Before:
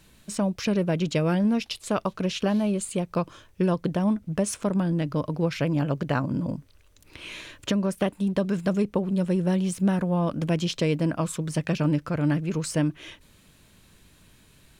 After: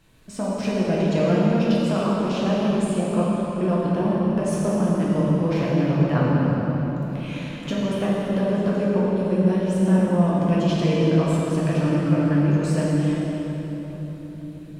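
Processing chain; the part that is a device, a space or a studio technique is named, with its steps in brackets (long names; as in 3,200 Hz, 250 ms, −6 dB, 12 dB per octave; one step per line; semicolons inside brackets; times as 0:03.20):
swimming-pool hall (convolution reverb RT60 4.2 s, pre-delay 6 ms, DRR −7 dB; high-shelf EQ 3,200 Hz −7.5 dB)
level −3 dB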